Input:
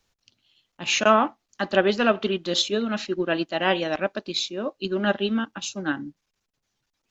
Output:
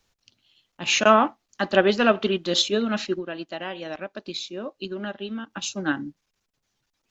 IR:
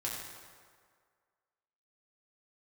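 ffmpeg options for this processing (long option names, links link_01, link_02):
-filter_complex "[0:a]asettb=1/sr,asplit=3[link_01][link_02][link_03];[link_01]atrim=end=3.174[link_04];[link_02]atrim=start=3.17:end=5.51,asetpts=PTS-STARTPTS,afade=type=in:duration=0.004:curve=qsin,afade=type=out:start_time=2.336:duration=0.004:curve=qsin,acompressor=threshold=-31dB:ratio=6[link_05];[link_03]atrim=start=5.506[link_06];[link_04][link_05]acrossfade=duration=0.004:curve1=hsin:curve2=qsin[link_07];[link_07][link_06]acrossfade=duration=0.004:curve1=qsin:curve2=hsin,volume=1.5dB"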